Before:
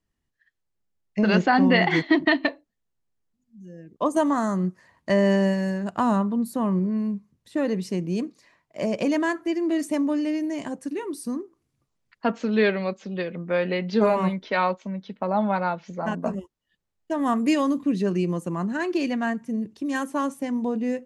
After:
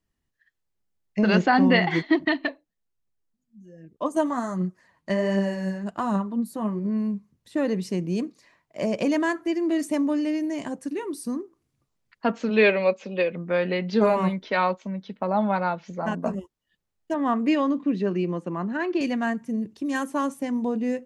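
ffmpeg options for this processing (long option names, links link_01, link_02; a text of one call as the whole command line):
ffmpeg -i in.wav -filter_complex "[0:a]asplit=3[link_01][link_02][link_03];[link_01]afade=type=out:start_time=1.79:duration=0.02[link_04];[link_02]flanger=delay=0:depth=6.9:regen=41:speed=1.3:shape=triangular,afade=type=in:start_time=1.79:duration=0.02,afade=type=out:start_time=6.84:duration=0.02[link_05];[link_03]afade=type=in:start_time=6.84:duration=0.02[link_06];[link_04][link_05][link_06]amix=inputs=3:normalize=0,asplit=3[link_07][link_08][link_09];[link_07]afade=type=out:start_time=12.49:duration=0.02[link_10];[link_08]highpass=140,equalizer=frequency=180:width_type=q:width=4:gain=-3,equalizer=frequency=540:width_type=q:width=4:gain=9,equalizer=frequency=950:width_type=q:width=4:gain=5,equalizer=frequency=2500:width_type=q:width=4:gain=10,lowpass=frequency=9000:width=0.5412,lowpass=frequency=9000:width=1.3066,afade=type=in:start_time=12.49:duration=0.02,afade=type=out:start_time=13.3:duration=0.02[link_11];[link_09]afade=type=in:start_time=13.3:duration=0.02[link_12];[link_10][link_11][link_12]amix=inputs=3:normalize=0,asettb=1/sr,asplit=3[link_13][link_14][link_15];[link_13]atrim=end=17.144[link_16];[link_14]atrim=start=17.14:end=19.01,asetpts=PTS-STARTPTS,afade=type=in:duration=0.004:curve=qsin,afade=type=out:start_time=1.866:duration=0.004:curve=qsin,highpass=180,lowpass=3400[link_17];[link_15]atrim=start=19.006[link_18];[link_16][link_17]acrossfade=duration=0.004:curve1=hsin:curve2=qsin[link_19];[link_19][link_18]acrossfade=duration=0.004:curve1=qsin:curve2=hsin" out.wav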